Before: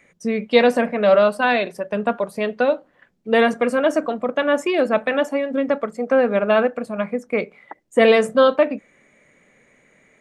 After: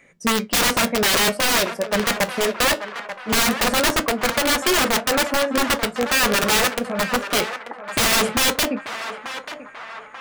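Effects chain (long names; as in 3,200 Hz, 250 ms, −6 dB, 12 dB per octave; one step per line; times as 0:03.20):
wrap-around overflow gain 15 dB
flanger 0.21 Hz, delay 7.4 ms, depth 4.6 ms, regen −69%
feedback echo with a band-pass in the loop 887 ms, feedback 59%, band-pass 1,200 Hz, level −8 dB
level +6.5 dB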